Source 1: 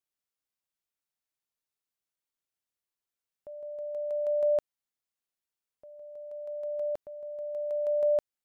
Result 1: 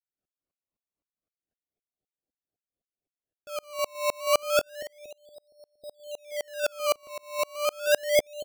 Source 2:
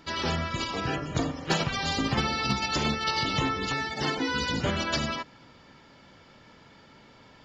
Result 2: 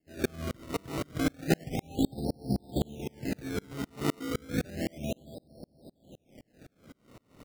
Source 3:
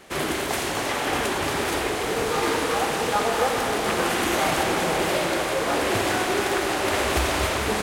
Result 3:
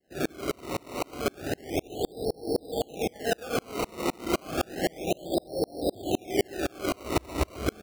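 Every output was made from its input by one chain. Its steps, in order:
in parallel at -2.5 dB: compressor, threshold -33 dBFS; on the sum: steep low-pass 770 Hz 96 dB/oct; bell 290 Hz +3 dB; on a send: feedback echo 0.233 s, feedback 54%, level -12 dB; on the sum: decimation with a swept rate 18×, swing 100% 0.31 Hz; dB-ramp tremolo swelling 3.9 Hz, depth 35 dB; normalise peaks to -12 dBFS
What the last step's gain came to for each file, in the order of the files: +9.0, +3.5, +1.5 dB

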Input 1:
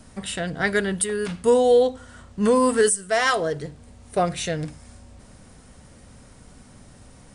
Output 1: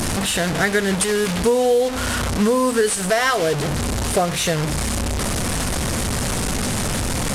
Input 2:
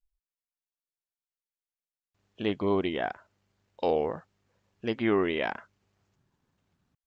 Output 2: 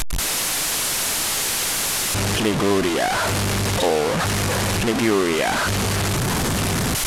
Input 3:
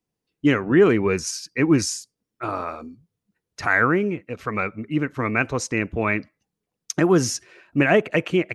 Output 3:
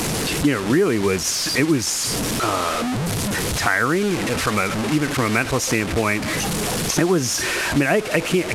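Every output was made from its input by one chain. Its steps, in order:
delta modulation 64 kbps, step -23.5 dBFS; compressor 4:1, threshold -23 dBFS; match loudness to -20 LUFS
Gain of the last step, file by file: +7.5, +9.0, +7.0 dB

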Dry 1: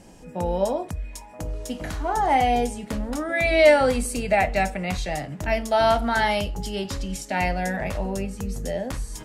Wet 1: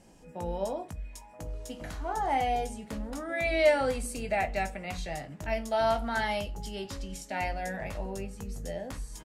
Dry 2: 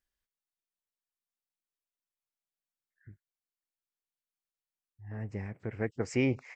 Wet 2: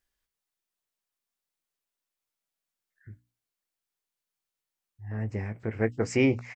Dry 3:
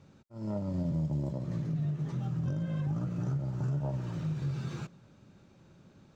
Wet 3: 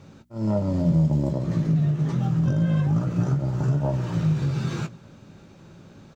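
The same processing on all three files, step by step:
notches 60/120/180/240/300 Hz; doubler 18 ms -11 dB; normalise peaks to -12 dBFS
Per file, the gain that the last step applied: -8.5, +5.0, +11.0 dB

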